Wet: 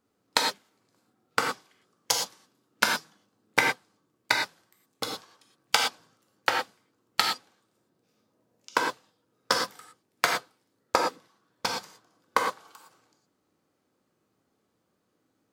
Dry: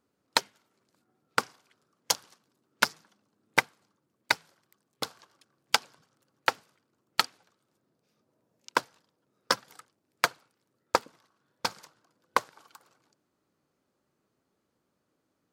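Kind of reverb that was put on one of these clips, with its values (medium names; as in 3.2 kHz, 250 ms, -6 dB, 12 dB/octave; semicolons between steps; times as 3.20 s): gated-style reverb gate 140 ms flat, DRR 0 dB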